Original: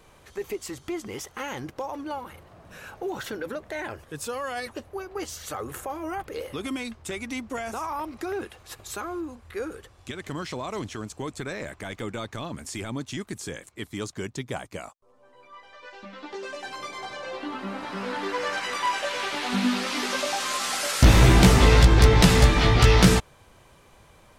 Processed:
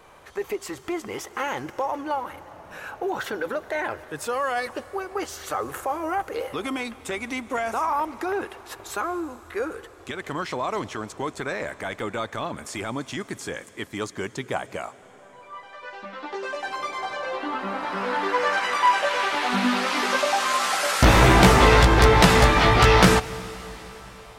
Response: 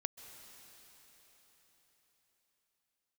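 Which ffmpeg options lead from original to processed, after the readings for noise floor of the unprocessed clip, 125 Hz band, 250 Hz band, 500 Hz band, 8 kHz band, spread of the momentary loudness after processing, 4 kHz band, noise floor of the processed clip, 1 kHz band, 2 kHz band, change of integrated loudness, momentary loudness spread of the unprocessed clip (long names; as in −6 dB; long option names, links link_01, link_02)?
−55 dBFS, −2.0 dB, +0.5 dB, +4.0 dB, 0.0 dB, 21 LU, +1.5 dB, −48 dBFS, +7.5 dB, +5.5 dB, +2.0 dB, 21 LU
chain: -filter_complex "[0:a]equalizer=frequency=1000:width=0.37:gain=11,asplit=2[link_01][link_02];[1:a]atrim=start_sample=2205,highshelf=frequency=6400:gain=10[link_03];[link_02][link_03]afir=irnorm=-1:irlink=0,volume=-5.5dB[link_04];[link_01][link_04]amix=inputs=2:normalize=0,volume=-6.5dB"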